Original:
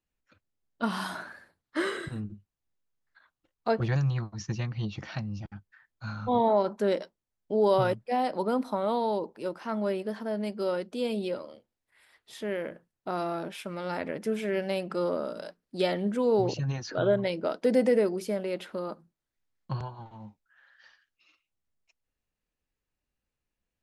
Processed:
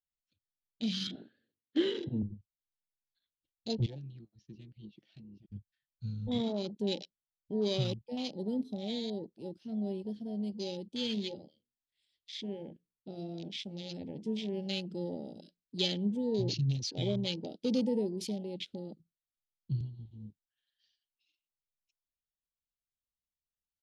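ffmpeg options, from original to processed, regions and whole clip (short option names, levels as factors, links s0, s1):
-filter_complex "[0:a]asettb=1/sr,asplit=3[s0][s1][s2];[s0]atrim=end=1.074[s3];[s1]atrim=start=1.07:end=2.23,asetpts=PTS-STARTPTS,afade=t=in:d=0.004:c=qsin,afade=t=out:st=1.156:d=0.004:c=qsin,acontrast=62,highpass=160,equalizer=f=170:t=q:w=4:g=-8,equalizer=f=250:t=q:w=4:g=6,equalizer=f=460:t=q:w=4:g=7,equalizer=f=660:t=q:w=4:g=-6,equalizer=f=1000:t=q:w=4:g=-8,equalizer=f=2300:t=q:w=4:g=-10,lowpass=f=2800:w=0.5412,lowpass=f=2800:w=1.3066[s4];[s2]atrim=start=2.226[s5];[s3][s4]acrossfade=d=0.004:c1=hsin:c2=qsin[s6];[s6][s5]acrossfade=d=0.004:c1=qsin:c2=hsin,asettb=1/sr,asplit=3[s7][s8][s9];[s7]atrim=end=3.864[s10];[s8]atrim=start=3.86:end=5.5,asetpts=PTS-STARTPTS,afade=t=in:d=0.004:c=qsin,afade=t=out:st=1.636:d=0.004:c=qsin,adynamicsmooth=sensitivity=2:basefreq=2100,highpass=410[s11];[s9]atrim=start=5.496[s12];[s10][s11]acrossfade=d=0.004:c1=hsin:c2=qsin[s13];[s13][s12]acrossfade=d=0.004:c1=qsin:c2=hsin,asettb=1/sr,asplit=3[s14][s15][s16];[s14]atrim=end=11.154[s17];[s15]atrim=start=11.15:end=14.54,asetpts=PTS-STARTPTS,afade=t=in:d=0.004:c=qsin,afade=t=out:st=3.386:d=0.004:c=qsin,lowpass=f=9000:w=0.5412,lowpass=f=9000:w=1.3066,bandreject=f=60:t=h:w=6,bandreject=f=120:t=h:w=6,bandreject=f=180:t=h:w=6,bandreject=f=240:t=h:w=6,bandreject=f=300:t=h:w=6,bandreject=f=360:t=h:w=6,bandreject=f=420:t=h:w=6,bandreject=f=480:t=h:w=6[s18];[s16]atrim=start=14.536[s19];[s17][s18]acrossfade=d=0.004:c1=hsin:c2=qsin[s20];[s20][s19]acrossfade=d=0.004:c1=qsin:c2=hsin,firequalizer=gain_entry='entry(140,0);entry(1000,-28);entry(3200,10)':delay=0.05:min_phase=1,afwtdn=0.00891,aemphasis=mode=reproduction:type=50fm"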